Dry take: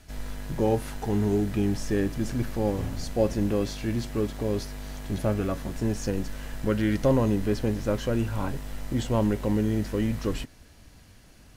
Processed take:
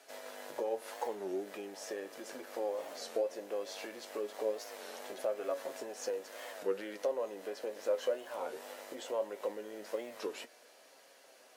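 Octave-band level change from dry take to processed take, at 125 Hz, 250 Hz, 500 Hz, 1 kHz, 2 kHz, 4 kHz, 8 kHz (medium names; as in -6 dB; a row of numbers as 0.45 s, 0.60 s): under -40 dB, -22.0 dB, -7.0 dB, -7.5 dB, -8.5 dB, -7.5 dB, -7.5 dB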